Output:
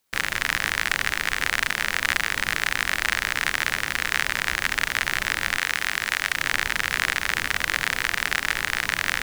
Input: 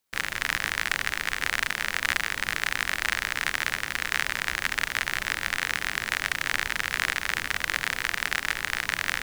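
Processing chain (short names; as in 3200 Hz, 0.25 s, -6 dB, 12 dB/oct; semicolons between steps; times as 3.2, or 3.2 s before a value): 5.59–6.37 low shelf 490 Hz -6 dB; in parallel at -0.5 dB: limiter -13.5 dBFS, peak gain reduction 9 dB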